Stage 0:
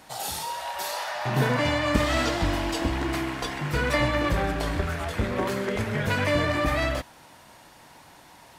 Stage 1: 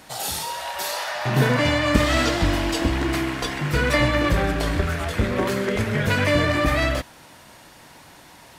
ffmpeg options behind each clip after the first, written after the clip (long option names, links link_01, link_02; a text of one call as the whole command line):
ffmpeg -i in.wav -af "equalizer=frequency=860:width=1.8:gain=-4,volume=5dB" out.wav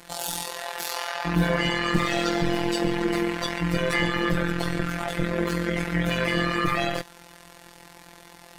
ffmpeg -i in.wav -af "afftfilt=real='hypot(re,im)*cos(PI*b)':imag='0':win_size=1024:overlap=0.75,tremolo=f=130:d=0.75,asoftclip=type=tanh:threshold=-14dB,volume=5.5dB" out.wav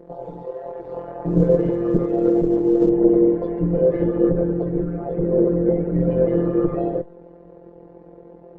ffmpeg -i in.wav -af "aeval=exprs='(tanh(5.62*val(0)+0.55)-tanh(0.55))/5.62':channel_layout=same,lowpass=frequency=450:width_type=q:width=4.9,volume=7.5dB" -ar 48000 -c:a libopus -b:a 16k out.opus